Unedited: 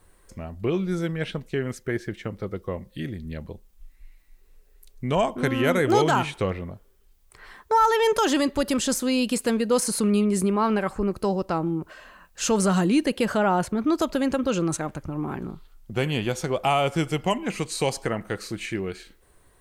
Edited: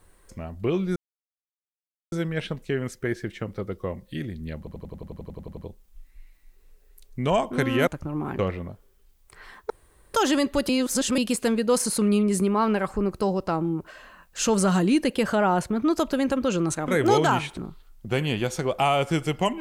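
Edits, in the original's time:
0:00.96: splice in silence 1.16 s
0:03.42: stutter 0.09 s, 12 plays
0:05.72–0:06.41: swap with 0:14.90–0:15.42
0:07.72–0:08.16: fill with room tone
0:08.71–0:09.20: reverse

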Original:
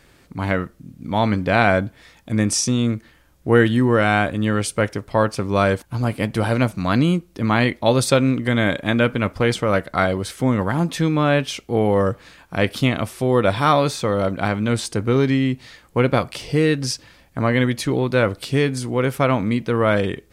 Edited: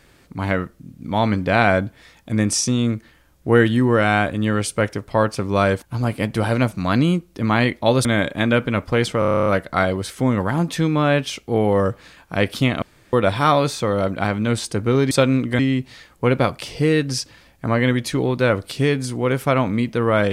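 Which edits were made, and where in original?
0:08.05–0:08.53: move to 0:15.32
0:09.67: stutter 0.03 s, 10 plays
0:13.03–0:13.34: fill with room tone

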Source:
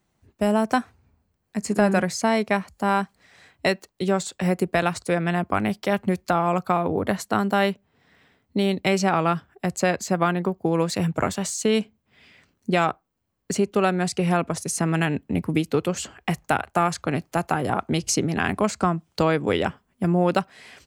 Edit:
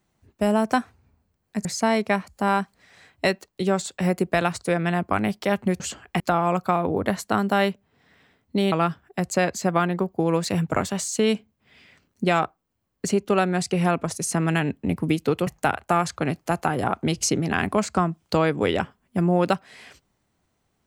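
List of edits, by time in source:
0:01.65–0:02.06: remove
0:08.73–0:09.18: remove
0:15.93–0:16.33: move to 0:06.21

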